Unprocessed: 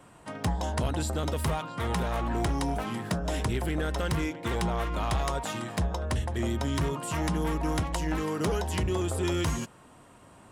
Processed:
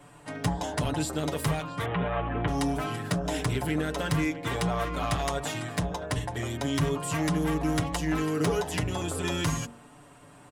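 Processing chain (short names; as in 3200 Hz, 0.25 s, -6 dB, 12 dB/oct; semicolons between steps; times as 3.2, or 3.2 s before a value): 1.85–2.48 steep low-pass 3200 Hz 48 dB/oct; comb 6.9 ms, depth 83%; de-hum 46.94 Hz, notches 27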